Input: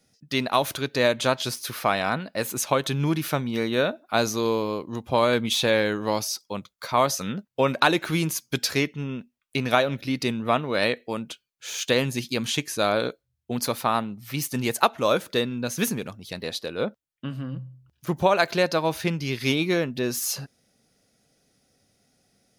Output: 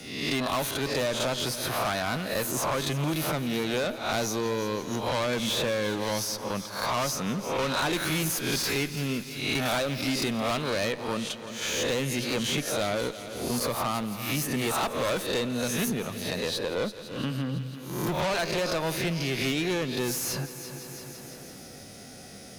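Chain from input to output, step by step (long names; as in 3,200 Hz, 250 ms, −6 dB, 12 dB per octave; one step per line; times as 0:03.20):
peak hold with a rise ahead of every peak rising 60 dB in 0.44 s
0:07.93–0:10.70: high-shelf EQ 3,500 Hz +10.5 dB
tube saturation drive 24 dB, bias 0.35
echo machine with several playback heads 168 ms, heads first and second, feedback 48%, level −19 dB
multiband upward and downward compressor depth 70%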